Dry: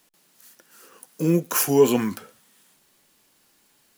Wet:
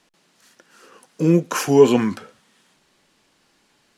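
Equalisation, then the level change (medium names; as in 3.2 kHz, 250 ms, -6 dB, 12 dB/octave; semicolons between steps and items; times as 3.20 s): distance through air 79 m; +4.5 dB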